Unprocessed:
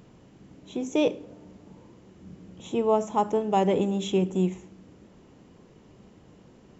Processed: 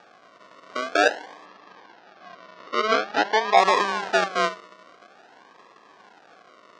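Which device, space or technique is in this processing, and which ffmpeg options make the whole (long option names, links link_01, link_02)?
circuit-bent sampling toy: -filter_complex "[0:a]acrusher=samples=42:mix=1:aa=0.000001:lfo=1:lforange=25.2:lforate=0.48,highpass=570,equalizer=frequency=730:width_type=q:width=4:gain=6,equalizer=frequency=1100:width_type=q:width=4:gain=7,equalizer=frequency=1600:width_type=q:width=4:gain=5,lowpass=frequency=5900:width=0.5412,lowpass=frequency=5900:width=1.3066,asplit=3[link_01][link_02][link_03];[link_01]afade=type=out:start_time=1.45:duration=0.02[link_04];[link_02]lowpass=frequency=5700:width=0.5412,lowpass=frequency=5700:width=1.3066,afade=type=in:start_time=1.45:duration=0.02,afade=type=out:start_time=3.56:duration=0.02[link_05];[link_03]afade=type=in:start_time=3.56:duration=0.02[link_06];[link_04][link_05][link_06]amix=inputs=3:normalize=0,volume=5dB"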